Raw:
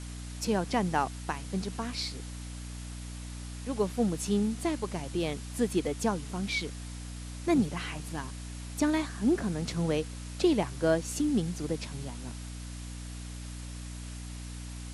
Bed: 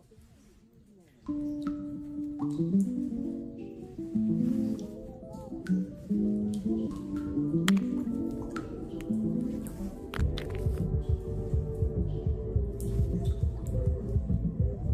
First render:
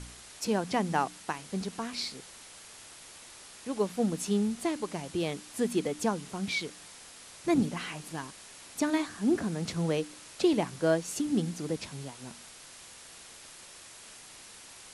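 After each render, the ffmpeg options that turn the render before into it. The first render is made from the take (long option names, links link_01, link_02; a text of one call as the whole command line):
ffmpeg -i in.wav -af "bandreject=frequency=60:width_type=h:width=4,bandreject=frequency=120:width_type=h:width=4,bandreject=frequency=180:width_type=h:width=4,bandreject=frequency=240:width_type=h:width=4,bandreject=frequency=300:width_type=h:width=4" out.wav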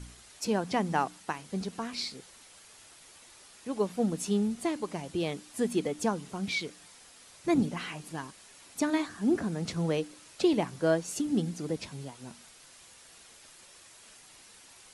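ffmpeg -i in.wav -af "afftdn=noise_reduction=6:noise_floor=-50" out.wav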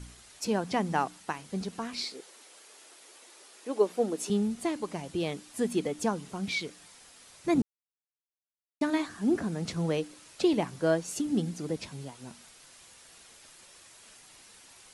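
ffmpeg -i in.wav -filter_complex "[0:a]asettb=1/sr,asplit=3[link_01][link_02][link_03];[link_01]atrim=end=2.034[link_04];[link_02]atrim=start=2.03:end=4.3,asetpts=PTS-STARTPTS,afade=type=in:duration=0.004:curve=qsin,afade=type=out:start_time=2.266:duration=0.004:curve=qsin,highpass=frequency=370:width_type=q:width=1.8[link_05];[link_03]atrim=start=4.296[link_06];[link_04][link_05]acrossfade=duration=0.004:curve1=hsin:curve2=qsin[link_07];[link_07][link_06]acrossfade=duration=0.004:curve1=qsin:curve2=hsin,asplit=3[link_08][link_09][link_10];[link_08]atrim=end=7.62,asetpts=PTS-STARTPTS,afade=type=out:start_time=7.616:duration=0.004:curve=hsin[link_11];[link_09]atrim=start=7.62:end=8.81,asetpts=PTS-STARTPTS,volume=0[link_12];[link_10]atrim=start=8.81,asetpts=PTS-STARTPTS,afade=type=in:duration=0.004:curve=hsin[link_13];[link_11][link_12][link_13]concat=n=3:v=0:a=1" out.wav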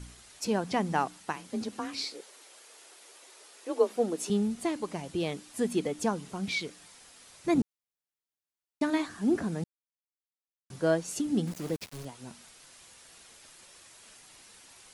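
ffmpeg -i in.wav -filter_complex "[0:a]asettb=1/sr,asplit=3[link_01][link_02][link_03];[link_01]atrim=end=1.364[link_04];[link_02]atrim=start=1.36:end=3.96,asetpts=PTS-STARTPTS,afade=type=in:duration=0.004:curve=qsin,afade=type=out:start_time=2.596:duration=0.004:curve=qsin,afreqshift=33[link_05];[link_03]atrim=start=3.956[link_06];[link_04][link_05]acrossfade=duration=0.004:curve1=hsin:curve2=qsin[link_07];[link_07][link_06]acrossfade=duration=0.004:curve1=qsin:curve2=hsin,asettb=1/sr,asplit=3[link_08][link_09][link_10];[link_08]atrim=end=11.474[link_11];[link_09]atrim=start=11.47:end=12.05,asetpts=PTS-STARTPTS,afade=type=in:duration=0.004:curve=qsin,afade=type=out:start_time=0.576:duration=0.004:curve=qsin,aeval=exprs='val(0)*gte(abs(val(0)),0.01)':channel_layout=same[link_12];[link_10]atrim=start=12.046[link_13];[link_11][link_12]acrossfade=duration=0.004:curve1=hsin:curve2=qsin[link_14];[link_14][link_13]acrossfade=duration=0.004:curve1=qsin:curve2=hsin,asplit=3[link_15][link_16][link_17];[link_15]atrim=end=9.64,asetpts=PTS-STARTPTS,afade=type=out:start_time=9.636:duration=0.004:curve=hsin[link_18];[link_16]atrim=start=9.64:end=10.7,asetpts=PTS-STARTPTS,volume=0[link_19];[link_17]atrim=start=10.7,asetpts=PTS-STARTPTS,afade=type=in:duration=0.004:curve=hsin[link_20];[link_18][link_19][link_20]concat=n=3:v=0:a=1" out.wav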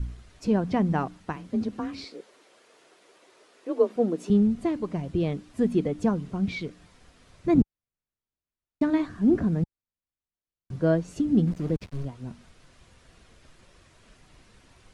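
ffmpeg -i in.wav -af "aemphasis=mode=reproduction:type=riaa,bandreject=frequency=840:width=12" out.wav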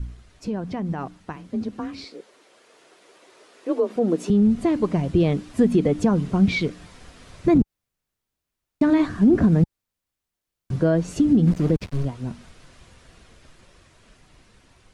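ffmpeg -i in.wav -af "alimiter=limit=-19dB:level=0:latency=1:release=104,dynaudnorm=framelen=820:gausssize=9:maxgain=10dB" out.wav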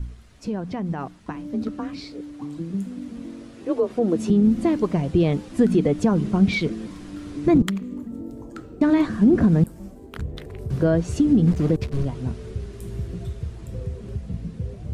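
ffmpeg -i in.wav -i bed.wav -filter_complex "[1:a]volume=-1.5dB[link_01];[0:a][link_01]amix=inputs=2:normalize=0" out.wav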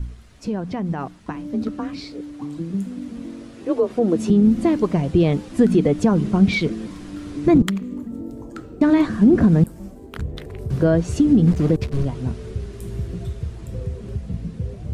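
ffmpeg -i in.wav -af "volume=2.5dB" out.wav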